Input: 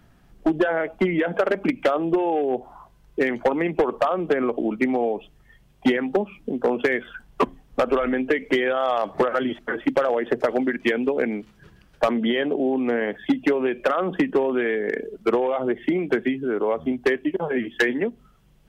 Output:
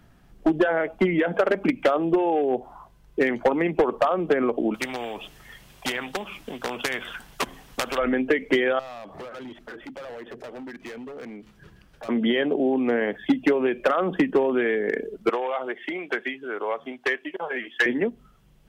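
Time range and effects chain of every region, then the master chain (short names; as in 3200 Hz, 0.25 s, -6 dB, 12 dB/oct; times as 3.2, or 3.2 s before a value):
4.74–7.98 tilt shelf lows -5.5 dB, about 660 Hz + spectral compressor 2:1
8.79–12.09 overloaded stage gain 23.5 dB + compressor 4:1, threshold -39 dBFS
15.29–17.86 HPF 840 Hz 6 dB/oct + overdrive pedal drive 7 dB, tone 4500 Hz, clips at -10 dBFS
whole clip: dry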